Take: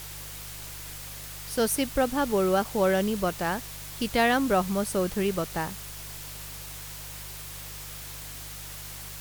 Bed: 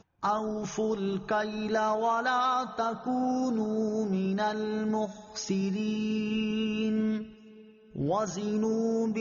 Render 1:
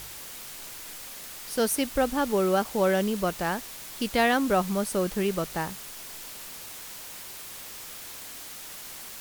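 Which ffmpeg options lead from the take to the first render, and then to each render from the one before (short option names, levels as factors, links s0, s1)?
-af "bandreject=f=50:t=h:w=4,bandreject=f=100:t=h:w=4,bandreject=f=150:t=h:w=4"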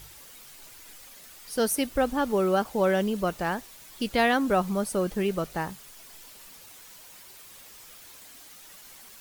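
-af "afftdn=nr=9:nf=-42"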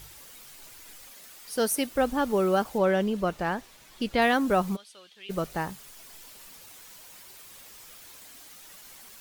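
-filter_complex "[0:a]asettb=1/sr,asplit=3[s0][s1][s2];[s0]atrim=end=1.114[s3];[s1]atrim=start=1.11:end=1.99,asetpts=PTS-STARTPTS,afade=t=in:d=0.004:c=qsin,afade=t=out:st=0.876:d=0.004:c=qsin,lowshelf=f=100:g=-11.5[s4];[s2]atrim=start=1.986[s5];[s3][s4]acrossfade=d=0.004:c1=hsin:c2=qsin[s6];[s6][s5]acrossfade=d=0.004:c1=qsin:c2=hsin,asettb=1/sr,asplit=3[s7][s8][s9];[s7]atrim=end=2.784[s10];[s8]atrim=start=2.78:end=4.22,asetpts=PTS-STARTPTS,afade=t=in:d=0.004:c=qsin,afade=t=out:st=1.436:d=0.004:c=qsin,highshelf=f=6900:g=-10.5[s11];[s9]atrim=start=4.216[s12];[s10][s11]acrossfade=d=0.004:c1=hsin:c2=qsin[s13];[s13][s12]acrossfade=d=0.004:c1=qsin:c2=hsin,asplit=3[s14][s15][s16];[s14]afade=t=out:st=4.75:d=0.02[s17];[s15]bandpass=f=3400:t=q:w=3.4,afade=t=in:st=4.75:d=0.02,afade=t=out:st=5.29:d=0.02[s18];[s16]afade=t=in:st=5.29:d=0.02[s19];[s17][s18][s19]amix=inputs=3:normalize=0"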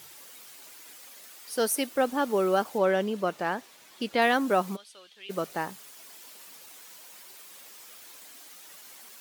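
-af "highpass=240"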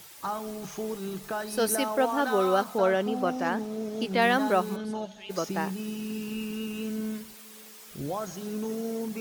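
-filter_complex "[1:a]volume=0.596[s0];[0:a][s0]amix=inputs=2:normalize=0"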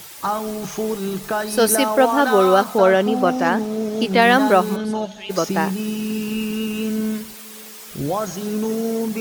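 -af "volume=3.16,alimiter=limit=0.794:level=0:latency=1"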